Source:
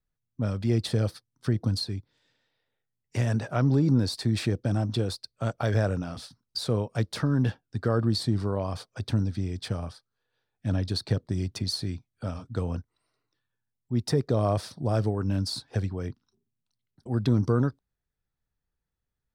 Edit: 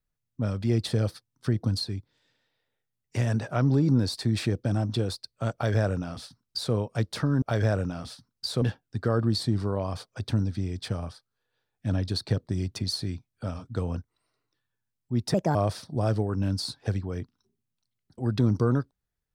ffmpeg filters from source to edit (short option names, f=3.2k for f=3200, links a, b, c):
-filter_complex "[0:a]asplit=5[a][b][c][d][e];[a]atrim=end=7.422[f];[b]atrim=start=5.538:end=6.742[g];[c]atrim=start=7.418:end=14.144[h];[d]atrim=start=14.14:end=14.43,asetpts=PTS-STARTPTS,asetrate=60858,aresample=44100,atrim=end_sample=9267,asetpts=PTS-STARTPTS[i];[e]atrim=start=14.426[j];[f][g]acrossfade=d=0.004:c1=hsin:c2=hsin[k];[k][h]acrossfade=d=0.004:c1=hsin:c2=hsin[l];[l][i]acrossfade=d=0.004:c1=hsin:c2=hsin[m];[m][j]acrossfade=d=0.004:c1=hsin:c2=hsin"